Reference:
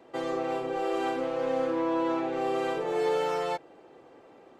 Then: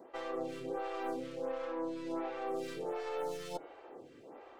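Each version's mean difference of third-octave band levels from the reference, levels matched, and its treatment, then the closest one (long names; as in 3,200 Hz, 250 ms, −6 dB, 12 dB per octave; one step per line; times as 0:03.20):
5.5 dB: stylus tracing distortion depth 0.13 ms
hum removal 157.1 Hz, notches 25
reversed playback
downward compressor 6 to 1, threshold −37 dBFS, peak gain reduction 13.5 dB
reversed playback
phaser with staggered stages 1.4 Hz
level +3.5 dB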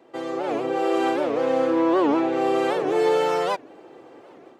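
2.0 dB: high-pass filter 110 Hz 6 dB per octave
parametric band 330 Hz +3.5 dB 0.42 octaves
automatic gain control gain up to 6.5 dB
wow of a warped record 78 rpm, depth 250 cents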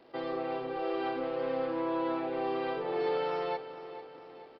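3.5 dB: surface crackle 390 per second −48 dBFS
on a send: repeating echo 444 ms, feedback 50%, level −13 dB
on the sum: downsampling to 11,025 Hz
level −4 dB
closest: second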